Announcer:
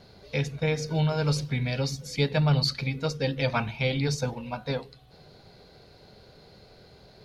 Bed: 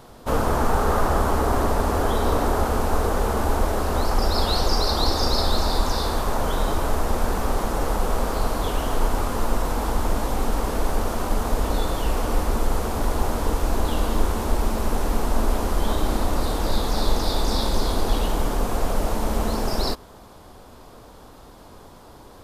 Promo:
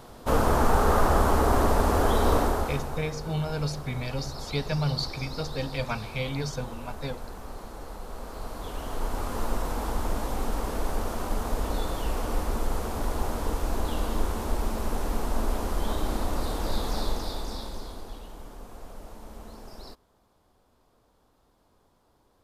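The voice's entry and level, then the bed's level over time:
2.35 s, −4.5 dB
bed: 0:02.37 −1 dB
0:03.11 −17 dB
0:08.05 −17 dB
0:09.39 −6 dB
0:16.94 −6 dB
0:18.23 −20.5 dB

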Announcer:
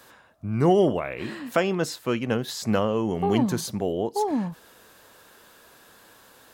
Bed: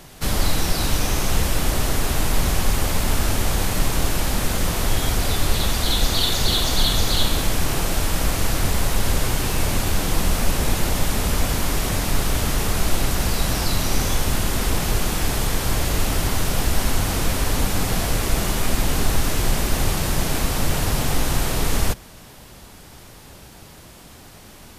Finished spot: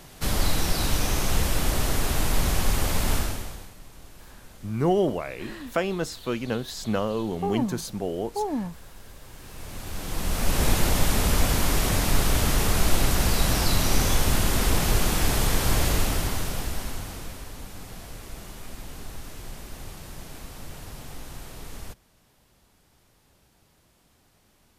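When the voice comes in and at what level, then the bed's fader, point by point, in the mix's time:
4.20 s, −3.0 dB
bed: 0:03.16 −3.5 dB
0:03.77 −26.5 dB
0:09.19 −26.5 dB
0:10.63 −1 dB
0:15.87 −1 dB
0:17.53 −19 dB

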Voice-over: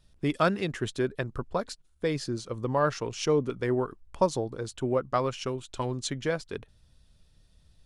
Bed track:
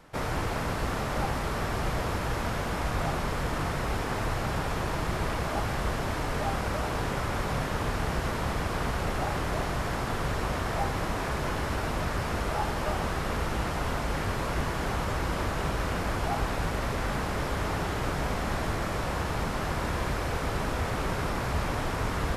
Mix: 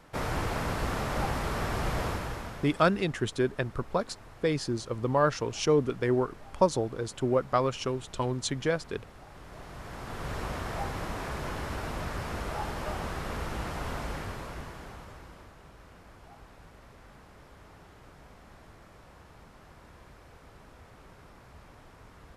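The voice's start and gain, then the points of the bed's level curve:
2.40 s, +1.0 dB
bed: 0:02.06 −1 dB
0:03.05 −21 dB
0:09.27 −21 dB
0:10.36 −5 dB
0:14.05 −5 dB
0:15.59 −23 dB

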